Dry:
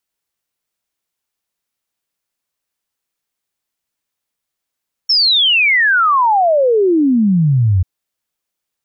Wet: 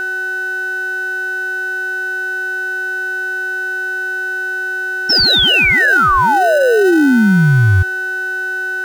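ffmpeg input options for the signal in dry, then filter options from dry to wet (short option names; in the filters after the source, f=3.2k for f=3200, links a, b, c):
-f lavfi -i "aevalsrc='0.355*clip(min(t,2.74-t)/0.01,0,1)*sin(2*PI*5500*2.74/log(87/5500)*(exp(log(87/5500)*t/2.74)-1))':d=2.74:s=44100"
-filter_complex "[0:a]aeval=exprs='val(0)+0.126*sin(2*PI*1500*n/s)':c=same,asplit=2[a][b];[b]acrusher=samples=39:mix=1:aa=0.000001,volume=-11.5dB[c];[a][c]amix=inputs=2:normalize=0"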